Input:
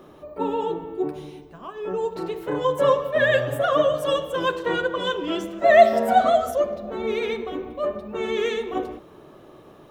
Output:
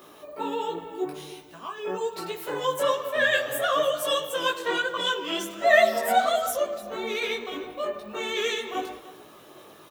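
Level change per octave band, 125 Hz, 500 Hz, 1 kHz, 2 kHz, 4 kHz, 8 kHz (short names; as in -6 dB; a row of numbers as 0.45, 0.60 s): -12.0 dB, -5.5 dB, -4.0 dB, +1.0 dB, +4.0 dB, n/a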